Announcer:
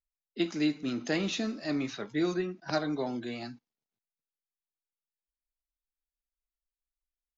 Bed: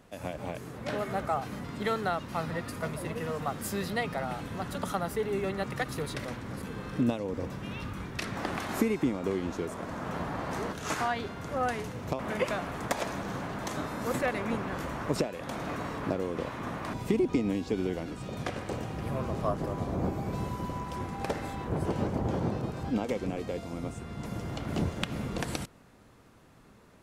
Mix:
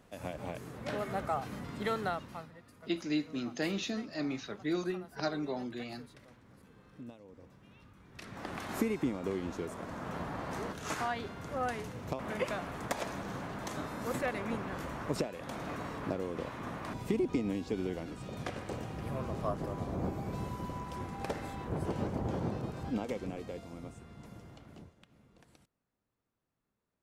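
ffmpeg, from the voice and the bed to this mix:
ffmpeg -i stem1.wav -i stem2.wav -filter_complex "[0:a]adelay=2500,volume=-4dB[link_01];[1:a]volume=12.5dB,afade=type=out:start_time=2.05:duration=0.46:silence=0.141254,afade=type=in:start_time=8.03:duration=0.74:silence=0.158489,afade=type=out:start_time=22.88:duration=2.08:silence=0.0595662[link_02];[link_01][link_02]amix=inputs=2:normalize=0" out.wav

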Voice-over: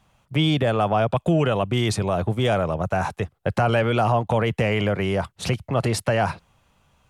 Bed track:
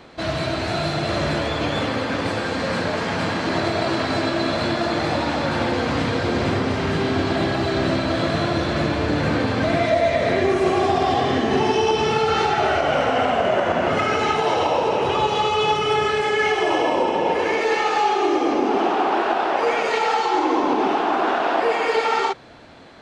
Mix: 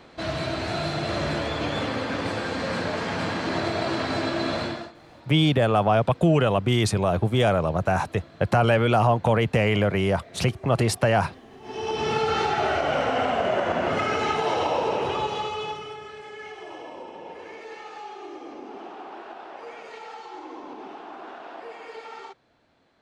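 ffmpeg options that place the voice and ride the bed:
ffmpeg -i stem1.wav -i stem2.wav -filter_complex "[0:a]adelay=4950,volume=0.5dB[link_01];[1:a]volume=19dB,afade=type=out:start_time=4.56:duration=0.36:silence=0.0668344,afade=type=in:start_time=11.62:duration=0.51:silence=0.0668344,afade=type=out:start_time=14.9:duration=1.07:silence=0.16788[link_02];[link_01][link_02]amix=inputs=2:normalize=0" out.wav

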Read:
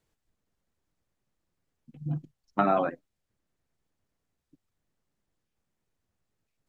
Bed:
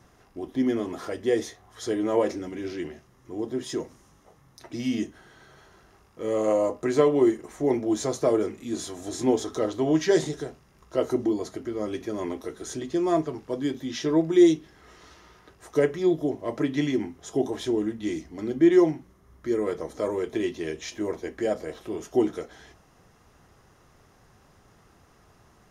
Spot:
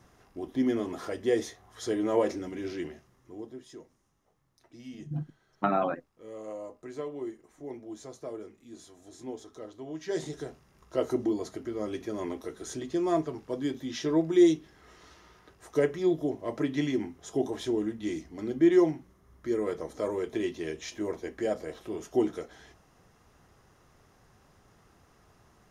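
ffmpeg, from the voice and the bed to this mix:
ffmpeg -i stem1.wav -i stem2.wav -filter_complex "[0:a]adelay=3050,volume=-2.5dB[link_01];[1:a]volume=11dB,afade=type=out:start_time=2.8:duration=0.83:silence=0.188365,afade=type=in:start_time=10:duration=0.51:silence=0.211349[link_02];[link_01][link_02]amix=inputs=2:normalize=0" out.wav

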